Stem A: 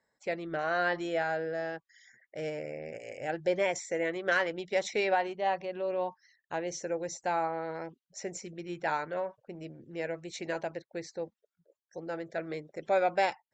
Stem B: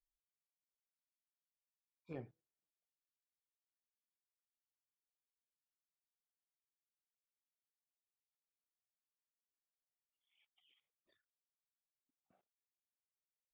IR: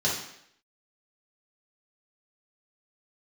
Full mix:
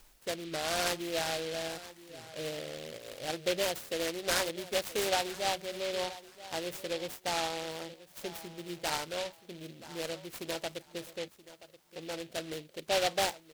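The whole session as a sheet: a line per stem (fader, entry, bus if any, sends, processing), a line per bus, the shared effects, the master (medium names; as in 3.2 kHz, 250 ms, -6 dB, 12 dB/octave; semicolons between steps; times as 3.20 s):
-2.5 dB, 0.00 s, no send, echo send -16.5 dB, none
+2.5 dB, 0.00 s, no send, no echo send, level flattener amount 70%; auto duck -12 dB, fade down 0.30 s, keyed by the first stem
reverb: none
echo: feedback delay 978 ms, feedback 22%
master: delay time shaken by noise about 2.9 kHz, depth 0.14 ms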